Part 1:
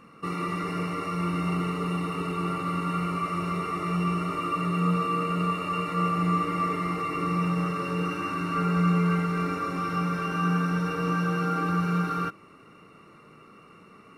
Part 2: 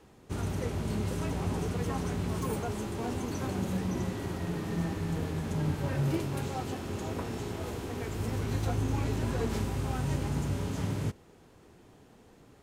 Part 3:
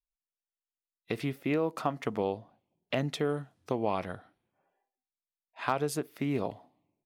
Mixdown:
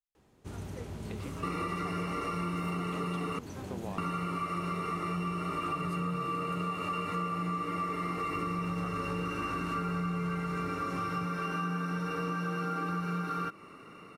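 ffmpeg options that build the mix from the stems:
ffmpeg -i stem1.wav -i stem2.wav -i stem3.wav -filter_complex "[0:a]equalizer=frequency=81:width_type=o:width=2.3:gain=-4,adelay=1200,volume=2dB,asplit=3[link_01][link_02][link_03];[link_01]atrim=end=3.39,asetpts=PTS-STARTPTS,afade=type=out:start_time=3.386:duration=0.004:curve=hsin[link_04];[link_02]atrim=start=3.39:end=3.98,asetpts=PTS-STARTPTS,volume=0[link_05];[link_03]atrim=start=3.98,asetpts=PTS-STARTPTS,afade=type=in:duration=0.004:curve=hsin[link_06];[link_04][link_05][link_06]concat=n=3:v=0:a=1[link_07];[1:a]adelay=150,volume=-8dB[link_08];[2:a]volume=-12dB[link_09];[link_07][link_08][link_09]amix=inputs=3:normalize=0,acompressor=threshold=-31dB:ratio=6" out.wav

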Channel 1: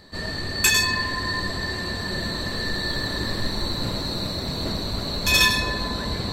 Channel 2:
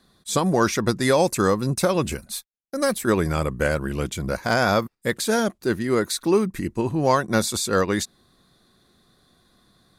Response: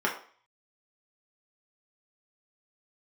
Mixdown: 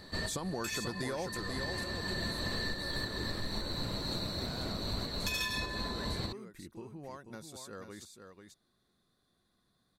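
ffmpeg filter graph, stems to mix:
-filter_complex "[0:a]volume=-2dB[link_01];[1:a]acompressor=threshold=-30dB:ratio=3,volume=-5dB,afade=type=out:start_time=1.23:duration=0.2:silence=0.266073,asplit=3[link_02][link_03][link_04];[link_03]volume=-7dB[link_05];[link_04]apad=whole_len=279031[link_06];[link_01][link_06]sidechaincompress=threshold=-48dB:ratio=8:attack=11:release=360[link_07];[link_05]aecho=0:1:489:1[link_08];[link_07][link_02][link_08]amix=inputs=3:normalize=0,acompressor=threshold=-32dB:ratio=6"

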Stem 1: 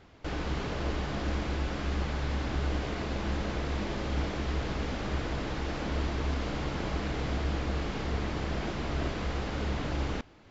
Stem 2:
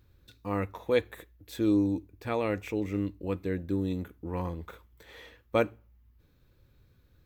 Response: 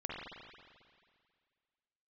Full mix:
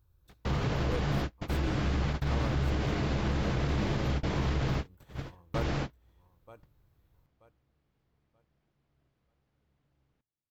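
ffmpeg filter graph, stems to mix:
-filter_complex "[0:a]equalizer=frequency=130:width=2.9:gain=11.5,volume=1.5dB[link_01];[1:a]equalizer=frequency=250:width_type=o:width=1:gain=-11,equalizer=frequency=500:width_type=o:width=1:gain=-5,equalizer=frequency=1000:width_type=o:width=1:gain=3,equalizer=frequency=2000:width_type=o:width=1:gain=-12,equalizer=frequency=4000:width_type=o:width=1:gain=-6,volume=-4dB,asplit=3[link_02][link_03][link_04];[link_03]volume=-17.5dB[link_05];[link_04]apad=whole_len=463352[link_06];[link_01][link_06]sidechaingate=range=-47dB:threshold=-58dB:ratio=16:detection=peak[link_07];[link_05]aecho=0:1:931|1862|2793|3724:1|0.28|0.0784|0.022[link_08];[link_07][link_02][link_08]amix=inputs=3:normalize=0,alimiter=limit=-21dB:level=0:latency=1:release=24"

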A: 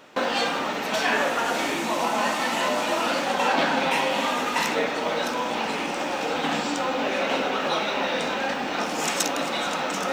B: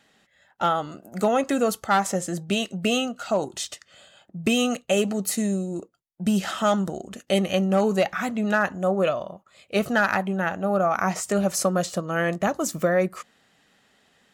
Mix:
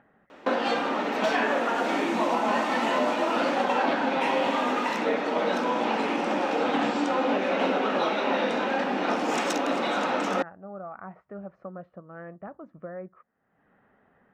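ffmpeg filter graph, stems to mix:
ffmpeg -i stem1.wav -i stem2.wav -filter_complex "[0:a]lowpass=frequency=1800:poles=1,lowshelf=frequency=170:width_type=q:width=1.5:gain=-10.5,adelay=300,volume=1.5dB[link_01];[1:a]lowpass=frequency=1600:width=0.5412,lowpass=frequency=1600:width=1.3066,acompressor=mode=upward:threshold=-30dB:ratio=2.5,volume=-17dB[link_02];[link_01][link_02]amix=inputs=2:normalize=0,alimiter=limit=-14.5dB:level=0:latency=1:release=479" out.wav

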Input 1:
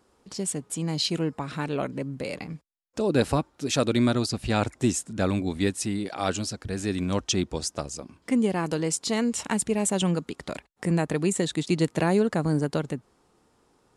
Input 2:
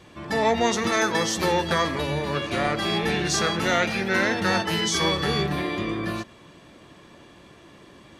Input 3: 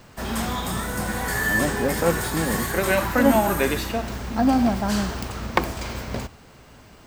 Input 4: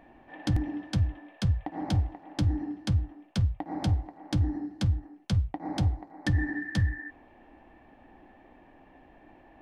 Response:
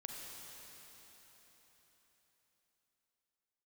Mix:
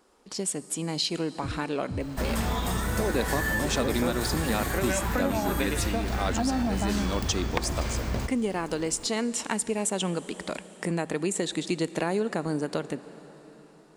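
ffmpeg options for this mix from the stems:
-filter_complex "[0:a]equalizer=frequency=100:width_type=o:width=1.3:gain=-14.5,volume=1.5dB,asplit=2[link_01][link_02];[link_02]volume=-11.5dB[link_03];[1:a]adelay=2050,volume=-13dB[link_04];[2:a]lowshelf=frequency=69:gain=11.5,acompressor=threshold=-19dB:ratio=6,adelay=2000,volume=0.5dB[link_05];[3:a]lowpass=1200,adelay=950,volume=-8.5dB[link_06];[4:a]atrim=start_sample=2205[link_07];[link_03][link_07]afir=irnorm=-1:irlink=0[link_08];[link_01][link_04][link_05][link_06][link_08]amix=inputs=5:normalize=0,acompressor=threshold=-27dB:ratio=2"

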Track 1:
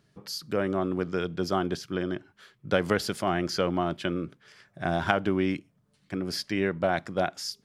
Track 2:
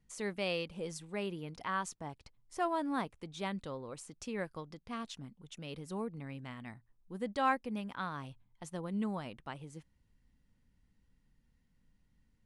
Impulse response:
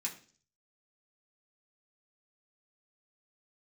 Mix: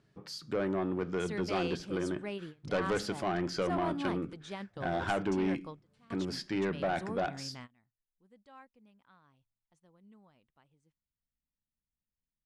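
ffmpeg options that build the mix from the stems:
-filter_complex "[0:a]highshelf=frequency=2700:gain=-7.5,volume=-2.5dB,asplit=3[link_01][link_02][link_03];[link_02]volume=-9.5dB[link_04];[1:a]adelay=1100,volume=-1dB[link_05];[link_03]apad=whole_len=597944[link_06];[link_05][link_06]sidechaingate=range=-23dB:threshold=-59dB:ratio=16:detection=peak[link_07];[2:a]atrim=start_sample=2205[link_08];[link_04][link_08]afir=irnorm=-1:irlink=0[link_09];[link_01][link_07][link_09]amix=inputs=3:normalize=0,asoftclip=type=tanh:threshold=-24.5dB,lowpass=9000"

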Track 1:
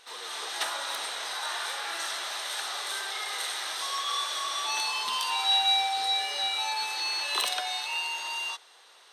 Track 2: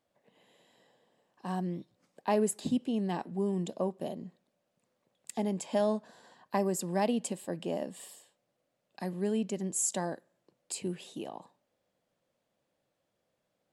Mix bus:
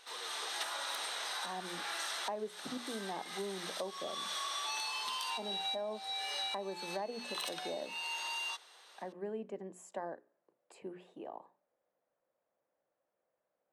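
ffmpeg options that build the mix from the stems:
ffmpeg -i stem1.wav -i stem2.wav -filter_complex "[0:a]volume=-3.5dB[link_01];[1:a]acrossover=split=350 2000:gain=0.178 1 0.0631[link_02][link_03][link_04];[link_02][link_03][link_04]amix=inputs=3:normalize=0,bandreject=frequency=60:width_type=h:width=6,bandreject=frequency=120:width_type=h:width=6,bandreject=frequency=180:width_type=h:width=6,bandreject=frequency=240:width_type=h:width=6,bandreject=frequency=300:width_type=h:width=6,bandreject=frequency=360:width_type=h:width=6,bandreject=frequency=420:width_type=h:width=6,volume=-2dB,asplit=2[link_05][link_06];[link_06]apad=whole_len=402370[link_07];[link_01][link_07]sidechaincompress=threshold=-46dB:ratio=8:attack=20:release=366[link_08];[link_08][link_05]amix=inputs=2:normalize=0,acompressor=threshold=-35dB:ratio=6" out.wav

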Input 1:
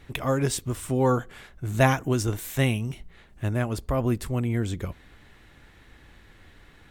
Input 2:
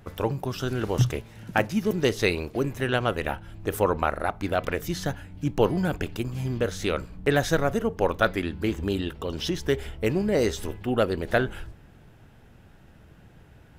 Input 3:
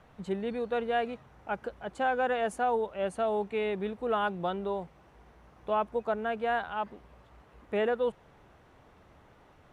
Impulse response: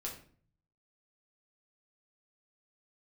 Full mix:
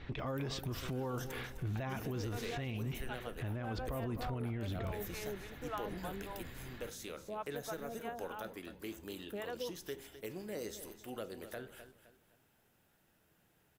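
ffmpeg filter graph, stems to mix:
-filter_complex "[0:a]acompressor=threshold=-30dB:ratio=4,lowpass=frequency=4800:width=0.5412,lowpass=frequency=4800:width=1.3066,volume=1.5dB,asplit=2[link_01][link_02];[link_02]volume=-18.5dB[link_03];[1:a]aemphasis=mode=production:type=bsi,acrossover=split=490[link_04][link_05];[link_05]acompressor=threshold=-29dB:ratio=6[link_06];[link_04][link_06]amix=inputs=2:normalize=0,adelay=200,volume=-17.5dB,asplit=3[link_07][link_08][link_09];[link_08]volume=-9dB[link_10];[link_09]volume=-11dB[link_11];[2:a]acrossover=split=610[link_12][link_13];[link_12]aeval=exprs='val(0)*(1-1/2+1/2*cos(2*PI*3.5*n/s))':channel_layout=same[link_14];[link_13]aeval=exprs='val(0)*(1-1/2-1/2*cos(2*PI*3.5*n/s))':channel_layout=same[link_15];[link_14][link_15]amix=inputs=2:normalize=0,adelay=1600,volume=-8dB[link_16];[3:a]atrim=start_sample=2205[link_17];[link_10][link_17]afir=irnorm=-1:irlink=0[link_18];[link_03][link_11]amix=inputs=2:normalize=0,aecho=0:1:258|516|774|1032|1290:1|0.33|0.109|0.0359|0.0119[link_19];[link_01][link_07][link_16][link_18][link_19]amix=inputs=5:normalize=0,alimiter=level_in=6.5dB:limit=-24dB:level=0:latency=1:release=41,volume=-6.5dB"

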